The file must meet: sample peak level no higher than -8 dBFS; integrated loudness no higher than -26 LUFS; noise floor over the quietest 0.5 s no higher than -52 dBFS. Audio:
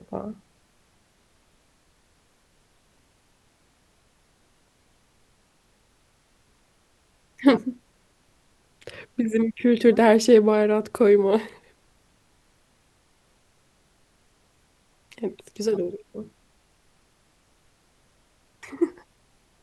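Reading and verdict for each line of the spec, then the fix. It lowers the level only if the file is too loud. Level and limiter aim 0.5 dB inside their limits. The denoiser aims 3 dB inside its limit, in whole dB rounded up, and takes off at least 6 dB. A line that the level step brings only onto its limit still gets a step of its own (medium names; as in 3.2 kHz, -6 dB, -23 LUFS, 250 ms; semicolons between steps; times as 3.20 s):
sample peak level -4.0 dBFS: fail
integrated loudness -21.5 LUFS: fail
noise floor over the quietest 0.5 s -63 dBFS: pass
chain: trim -5 dB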